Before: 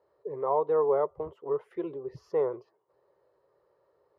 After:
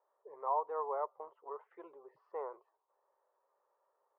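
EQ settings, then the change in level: ladder band-pass 1100 Hz, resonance 35%; air absorption 190 m; +5.5 dB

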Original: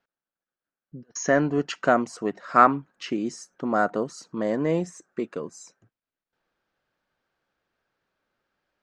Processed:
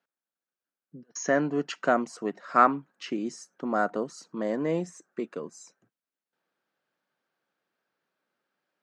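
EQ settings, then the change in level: HPF 150 Hz 24 dB/oct; -3.5 dB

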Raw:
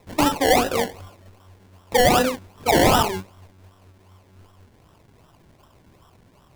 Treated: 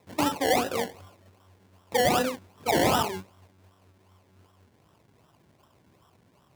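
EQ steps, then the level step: HPF 89 Hz; -6.5 dB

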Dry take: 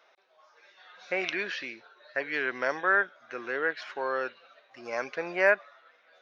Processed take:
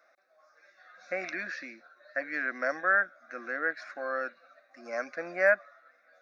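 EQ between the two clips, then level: fixed phaser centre 620 Hz, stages 8; 0.0 dB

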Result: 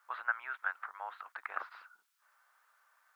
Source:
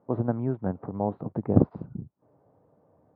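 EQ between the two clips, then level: Chebyshev high-pass 1400 Hz, order 4; +17.5 dB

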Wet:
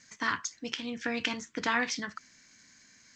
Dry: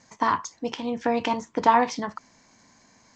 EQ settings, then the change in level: EQ curve 300 Hz 0 dB, 930 Hz -10 dB, 1500 Hz +9 dB; -7.5 dB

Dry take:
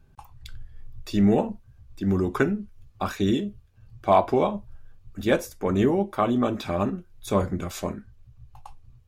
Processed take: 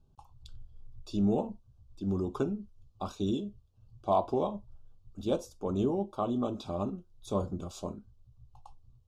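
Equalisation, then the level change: Butterworth band-stop 1900 Hz, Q 0.99; LPF 8000 Hz 12 dB/oct; -8.0 dB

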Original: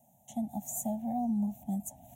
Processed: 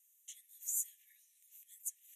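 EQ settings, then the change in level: brick-wall FIR band-pass 1700–14000 Hz; +1.5 dB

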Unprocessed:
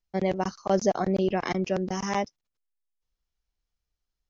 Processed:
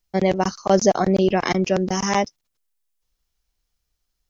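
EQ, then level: high shelf 4800 Hz +6.5 dB; +7.0 dB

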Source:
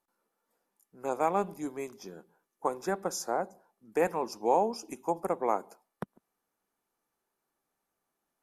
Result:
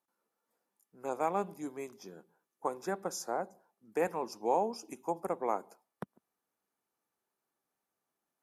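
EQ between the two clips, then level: HPF 70 Hz; -4.0 dB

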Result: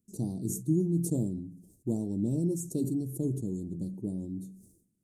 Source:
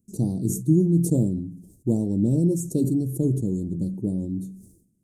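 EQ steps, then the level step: low shelf 270 Hz -5.5 dB; dynamic EQ 520 Hz, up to -5 dB, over -47 dBFS, Q 4.4; -5.0 dB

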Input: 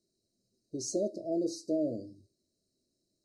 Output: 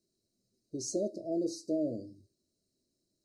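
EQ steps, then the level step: bell 1500 Hz -3.5 dB 2.8 oct; 0.0 dB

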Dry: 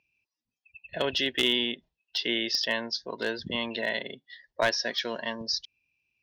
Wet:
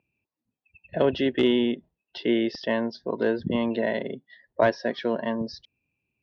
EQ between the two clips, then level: band-pass 340 Hz, Q 0.5; air absorption 57 m; low shelf 270 Hz +7.5 dB; +7.0 dB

